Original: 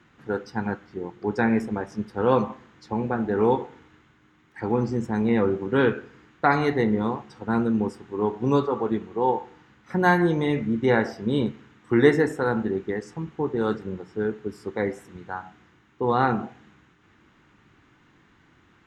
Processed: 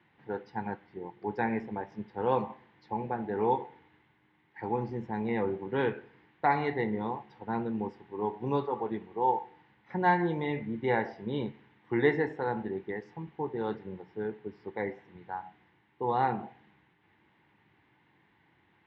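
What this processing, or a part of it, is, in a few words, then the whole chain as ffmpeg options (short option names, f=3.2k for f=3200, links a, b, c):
guitar cabinet: -filter_complex "[0:a]asettb=1/sr,asplit=3[a][b][c];[a]atrim=end=14.374[d];[b]atrim=start=14.37:end=15.21,asetpts=PTS-STARTPTS,afade=t=in:d=0.004:c=qsin,afade=t=out:st=0.836:d=0.004:c=qsin,lowpass=5.4k[e];[c]atrim=start=15.206[f];[d][e]acrossfade=d=0.004:c1=hsin:c2=qsin[g];[g][f]acrossfade=d=0.004:c1=qsin:c2=hsin,highpass=93,equalizer=f=250:t=q:w=4:g=-5,equalizer=f=860:t=q:w=4:g=8,equalizer=f=1.3k:t=q:w=4:g=-9,equalizer=f=2k:t=q:w=4:g=5,lowpass=f=4k:w=0.5412,lowpass=f=4k:w=1.3066,volume=-8dB"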